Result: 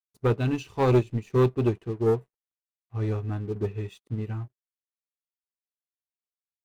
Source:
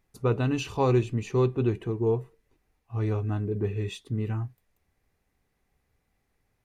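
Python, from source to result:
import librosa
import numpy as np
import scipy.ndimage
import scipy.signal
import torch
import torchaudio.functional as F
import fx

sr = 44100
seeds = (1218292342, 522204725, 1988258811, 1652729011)

y = np.sign(x) * np.maximum(np.abs(x) - 10.0 ** (-57.0 / 20.0), 0.0)
y = fx.leveller(y, sr, passes=2)
y = fx.upward_expand(y, sr, threshold_db=-27.0, expansion=2.5)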